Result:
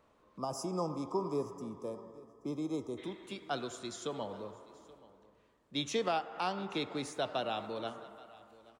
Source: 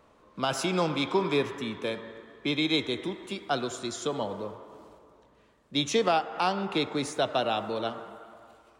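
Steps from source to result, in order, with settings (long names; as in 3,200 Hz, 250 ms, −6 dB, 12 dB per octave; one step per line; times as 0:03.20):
gain on a spectral selection 0:00.38–0:02.98, 1,300–4,700 Hz −22 dB
single-tap delay 828 ms −21.5 dB
level −8 dB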